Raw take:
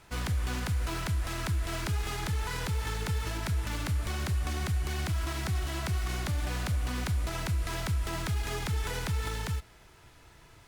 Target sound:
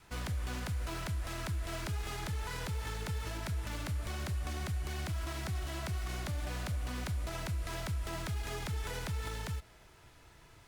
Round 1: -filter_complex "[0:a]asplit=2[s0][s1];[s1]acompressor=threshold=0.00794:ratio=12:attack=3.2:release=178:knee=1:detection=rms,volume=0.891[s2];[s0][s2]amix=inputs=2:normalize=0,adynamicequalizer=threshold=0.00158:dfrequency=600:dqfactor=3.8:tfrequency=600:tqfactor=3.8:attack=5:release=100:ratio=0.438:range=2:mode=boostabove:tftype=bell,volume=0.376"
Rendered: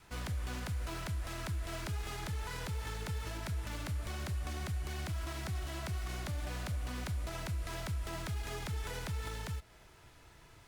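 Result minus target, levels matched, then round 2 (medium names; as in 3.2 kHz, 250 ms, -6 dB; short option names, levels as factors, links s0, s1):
compression: peak gain reduction +7 dB
-filter_complex "[0:a]asplit=2[s0][s1];[s1]acompressor=threshold=0.0188:ratio=12:attack=3.2:release=178:knee=1:detection=rms,volume=0.891[s2];[s0][s2]amix=inputs=2:normalize=0,adynamicequalizer=threshold=0.00158:dfrequency=600:dqfactor=3.8:tfrequency=600:tqfactor=3.8:attack=5:release=100:ratio=0.438:range=2:mode=boostabove:tftype=bell,volume=0.376"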